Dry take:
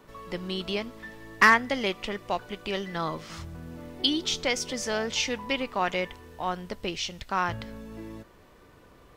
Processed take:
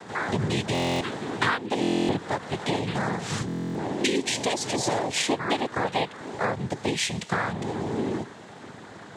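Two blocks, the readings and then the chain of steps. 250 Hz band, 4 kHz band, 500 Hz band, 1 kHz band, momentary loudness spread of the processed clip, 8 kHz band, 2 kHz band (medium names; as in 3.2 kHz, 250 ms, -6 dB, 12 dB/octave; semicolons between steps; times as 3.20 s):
+6.0 dB, 0.0 dB, +3.5 dB, +0.5 dB, 6 LU, +4.5 dB, -2.5 dB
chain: harmonic-percussive split harmonic +8 dB; peaking EQ 1.7 kHz -10 dB 0.28 oct; compression 10:1, threshold -30 dBFS, peak gain reduction 20.5 dB; noise-vocoded speech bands 6; buffer glitch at 0.73/1.81/3.47 s, samples 1024, times 11; trim +8 dB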